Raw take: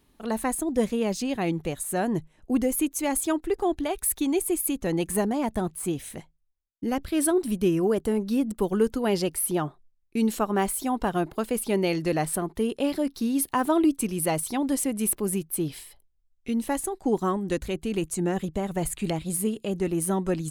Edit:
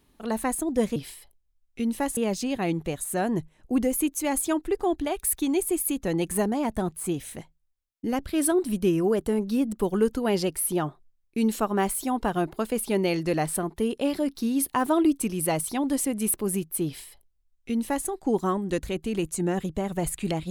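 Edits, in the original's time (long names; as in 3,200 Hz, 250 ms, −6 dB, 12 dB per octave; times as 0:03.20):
0:15.65–0:16.86: duplicate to 0:00.96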